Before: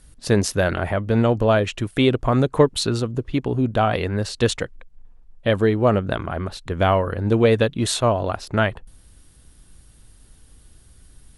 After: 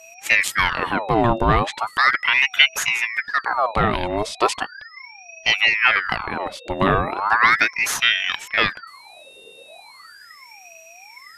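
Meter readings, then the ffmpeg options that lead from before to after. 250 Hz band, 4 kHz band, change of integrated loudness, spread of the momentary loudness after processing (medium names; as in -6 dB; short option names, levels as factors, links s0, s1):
-7.0 dB, +7.5 dB, +2.0 dB, 13 LU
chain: -af "aeval=exprs='val(0)+0.00631*sin(2*PI*3200*n/s)':c=same,aeval=exprs='val(0)*sin(2*PI*1500*n/s+1500*0.7/0.37*sin(2*PI*0.37*n/s))':c=same,volume=1.41"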